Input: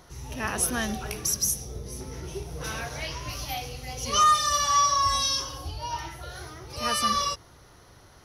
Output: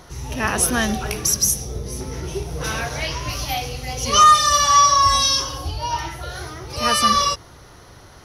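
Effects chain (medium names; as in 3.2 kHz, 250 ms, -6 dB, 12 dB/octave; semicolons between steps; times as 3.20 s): treble shelf 11 kHz -4 dB; trim +8.5 dB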